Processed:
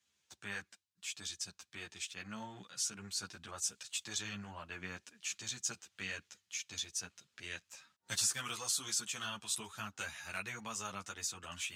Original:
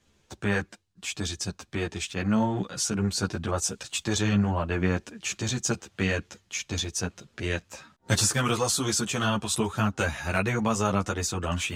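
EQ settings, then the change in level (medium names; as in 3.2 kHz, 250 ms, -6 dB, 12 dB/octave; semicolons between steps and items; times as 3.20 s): high-pass 77 Hz; amplifier tone stack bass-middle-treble 5-5-5; bass shelf 200 Hz -10 dB; -1.5 dB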